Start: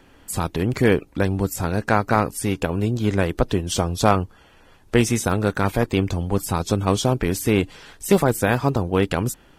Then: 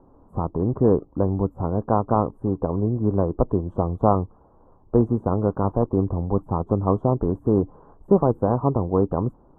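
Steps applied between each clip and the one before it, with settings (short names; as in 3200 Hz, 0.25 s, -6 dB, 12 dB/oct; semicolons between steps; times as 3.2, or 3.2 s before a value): elliptic low-pass 1100 Hz, stop band 50 dB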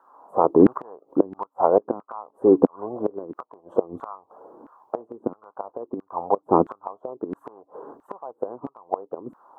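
flipped gate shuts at -12 dBFS, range -25 dB; LFO high-pass saw down 1.5 Hz 250–1500 Hz; gain +7 dB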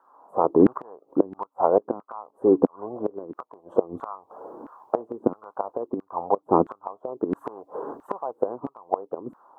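AGC gain up to 10 dB; gain -3 dB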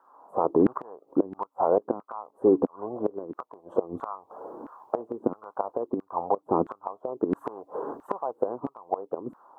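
limiter -10.5 dBFS, peak gain reduction 6.5 dB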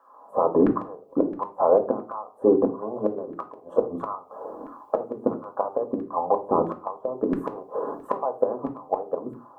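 reverb RT60 0.35 s, pre-delay 4 ms, DRR 4.5 dB; gain +1.5 dB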